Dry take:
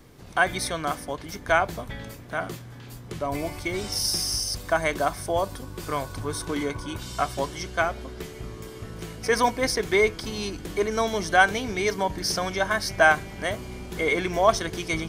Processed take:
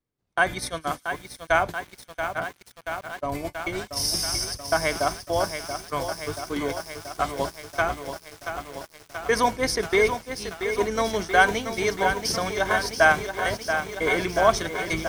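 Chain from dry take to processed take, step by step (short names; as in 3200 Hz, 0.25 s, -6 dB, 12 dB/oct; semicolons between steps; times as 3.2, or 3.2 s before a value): gate -28 dBFS, range -35 dB; on a send: thin delay 0.107 s, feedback 84%, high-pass 5300 Hz, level -19.5 dB; on the sum: lo-fi delay 0.681 s, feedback 80%, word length 7-bit, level -8 dB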